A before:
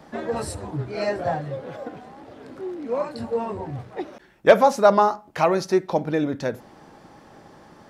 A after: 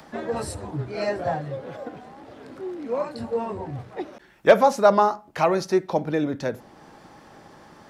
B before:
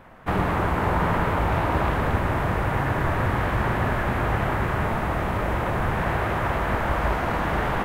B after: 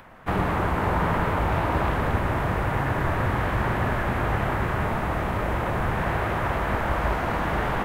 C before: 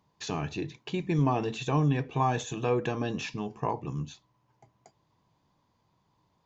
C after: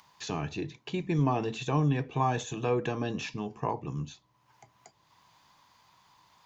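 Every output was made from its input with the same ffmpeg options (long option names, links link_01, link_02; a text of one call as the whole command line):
ffmpeg -i in.wav -filter_complex "[0:a]acrossover=split=510|830[link_01][link_02][link_03];[link_03]acompressor=mode=upward:threshold=-47dB:ratio=2.5[link_04];[link_01][link_02][link_04]amix=inputs=3:normalize=0,volume=-1dB" out.wav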